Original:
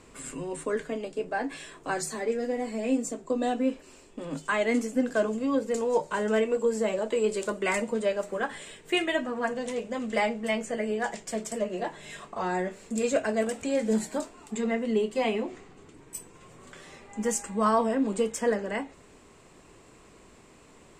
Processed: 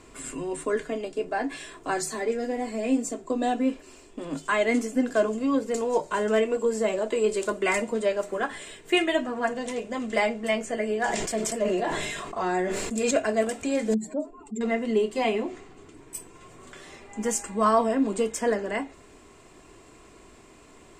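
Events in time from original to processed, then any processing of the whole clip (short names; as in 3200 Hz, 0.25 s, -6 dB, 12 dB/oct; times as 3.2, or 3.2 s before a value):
11–13.11 sustainer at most 27 dB/s
13.94–14.61 spectral contrast raised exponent 2.1
whole clip: comb 2.9 ms, depth 32%; gain +2 dB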